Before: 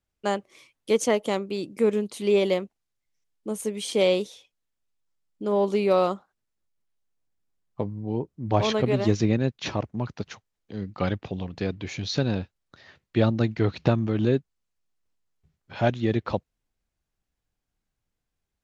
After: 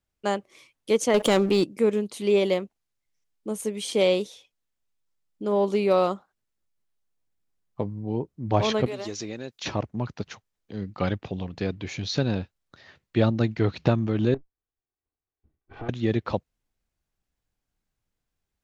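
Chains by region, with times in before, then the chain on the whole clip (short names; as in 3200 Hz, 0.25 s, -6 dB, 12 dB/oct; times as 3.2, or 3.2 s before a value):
1.14–1.64 sample leveller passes 2 + fast leveller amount 50%
8.86–9.66 tone controls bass -13 dB, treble +9 dB + compressor 2.5:1, threshold -33 dBFS
14.34–15.89 minimum comb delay 2.6 ms + compressor, threshold -30 dBFS + tape spacing loss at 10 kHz 42 dB
whole clip: dry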